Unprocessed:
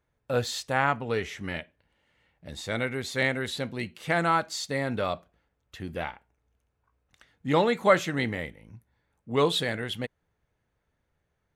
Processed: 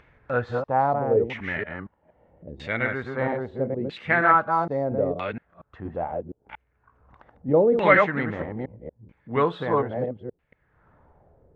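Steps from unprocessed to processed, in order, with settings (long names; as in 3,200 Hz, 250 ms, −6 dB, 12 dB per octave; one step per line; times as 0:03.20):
delay that plays each chunk backwards 234 ms, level −2.5 dB
auto-filter low-pass saw down 0.77 Hz 390–2,600 Hz
upward compression, threshold −42 dBFS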